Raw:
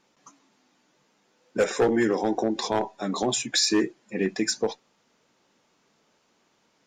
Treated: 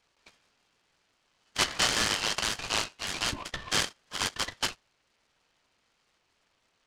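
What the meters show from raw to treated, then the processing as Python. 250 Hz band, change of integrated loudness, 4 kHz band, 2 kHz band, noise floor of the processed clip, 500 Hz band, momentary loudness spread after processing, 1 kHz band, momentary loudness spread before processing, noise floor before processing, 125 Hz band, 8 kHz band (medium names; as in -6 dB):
-16.5 dB, -3.5 dB, +1.5 dB, +2.0 dB, -74 dBFS, -15.5 dB, 8 LU, -3.5 dB, 9 LU, -68 dBFS, -5.0 dB, -1.0 dB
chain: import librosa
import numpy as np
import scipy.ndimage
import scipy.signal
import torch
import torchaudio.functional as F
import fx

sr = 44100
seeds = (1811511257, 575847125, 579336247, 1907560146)

y = fx.highpass(x, sr, hz=260.0, slope=6)
y = fx.freq_invert(y, sr, carrier_hz=3500)
y = fx.noise_mod_delay(y, sr, seeds[0], noise_hz=1500.0, depth_ms=0.074)
y = y * 10.0 ** (-3.5 / 20.0)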